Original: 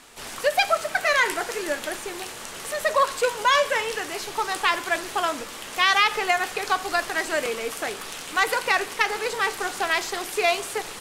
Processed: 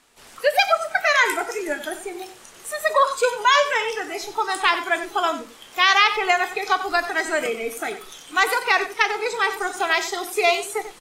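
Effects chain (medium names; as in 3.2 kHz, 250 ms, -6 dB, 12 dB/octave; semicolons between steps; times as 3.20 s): spectral noise reduction 13 dB; echo from a far wall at 16 m, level -12 dB; trim +3 dB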